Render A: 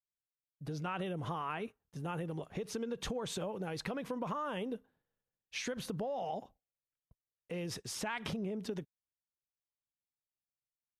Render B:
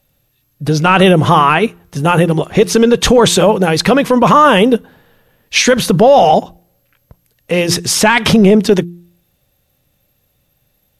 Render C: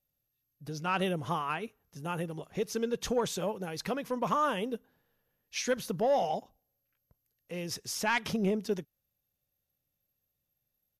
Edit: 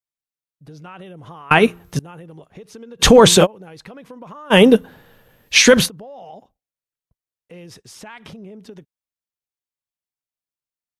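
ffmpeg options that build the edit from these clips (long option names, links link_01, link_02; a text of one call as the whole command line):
ffmpeg -i take0.wav -i take1.wav -filter_complex "[1:a]asplit=3[link_01][link_02][link_03];[0:a]asplit=4[link_04][link_05][link_06][link_07];[link_04]atrim=end=1.512[link_08];[link_01]atrim=start=1.508:end=1.992[link_09];[link_05]atrim=start=1.988:end=3.03[link_10];[link_02]atrim=start=2.99:end=3.47[link_11];[link_06]atrim=start=3.43:end=4.54[link_12];[link_03]atrim=start=4.5:end=5.89[link_13];[link_07]atrim=start=5.85[link_14];[link_08][link_09]acrossfade=duration=0.004:curve1=hsin:curve2=hsin[link_15];[link_15][link_10]acrossfade=duration=0.004:curve1=hsin:curve2=hsin[link_16];[link_16][link_11]acrossfade=duration=0.04:curve1=tri:curve2=tri[link_17];[link_17][link_12]acrossfade=duration=0.04:curve1=tri:curve2=tri[link_18];[link_18][link_13]acrossfade=duration=0.04:curve1=tri:curve2=tri[link_19];[link_19][link_14]acrossfade=duration=0.04:curve1=tri:curve2=tri" out.wav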